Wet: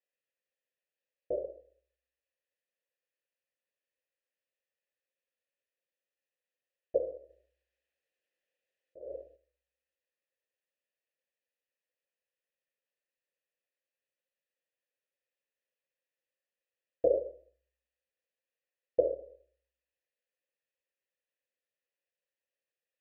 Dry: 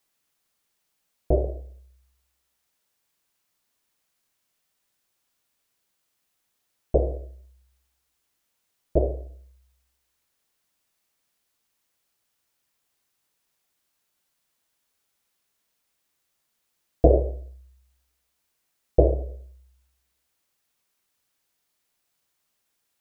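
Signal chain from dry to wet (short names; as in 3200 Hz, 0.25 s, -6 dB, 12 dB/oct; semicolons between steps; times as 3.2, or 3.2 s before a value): 7.29–9.36 negative-ratio compressor -31 dBFS, ratio -1; vowel filter e; gain -2 dB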